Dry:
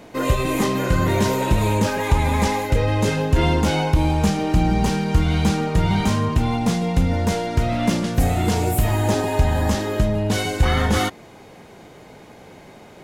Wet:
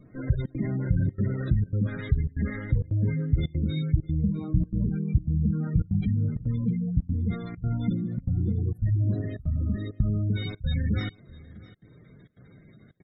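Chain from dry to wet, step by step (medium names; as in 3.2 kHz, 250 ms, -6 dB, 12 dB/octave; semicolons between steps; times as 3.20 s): comb filter that takes the minimum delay 0.55 ms; spectral gate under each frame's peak -15 dB strong; 3.26–4.02 s: peaking EQ 970 Hz -10.5 dB 1.5 oct; 9.16–10.02 s: spectral replace 750–1700 Hz both; ten-band graphic EQ 125 Hz +9 dB, 500 Hz -4 dB, 1 kHz -8 dB, 4 kHz +3 dB; trance gate "xxxxx.xxxxxx." 165 bpm -24 dB; on a send: delay 652 ms -21 dB; on the sum: trim -8.5 dB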